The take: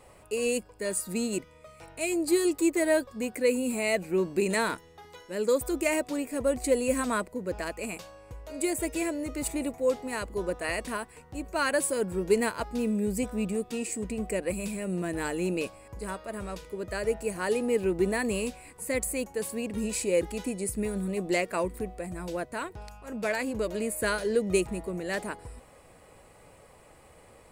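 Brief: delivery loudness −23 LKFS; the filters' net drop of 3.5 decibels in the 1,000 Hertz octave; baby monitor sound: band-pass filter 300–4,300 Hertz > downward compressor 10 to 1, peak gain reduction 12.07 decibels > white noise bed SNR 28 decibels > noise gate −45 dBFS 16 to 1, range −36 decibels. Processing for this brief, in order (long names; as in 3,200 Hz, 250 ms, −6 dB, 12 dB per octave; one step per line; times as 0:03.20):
band-pass filter 300–4,300 Hz
parametric band 1,000 Hz −4.5 dB
downward compressor 10 to 1, threshold −31 dBFS
white noise bed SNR 28 dB
noise gate −45 dBFS 16 to 1, range −36 dB
level +14.5 dB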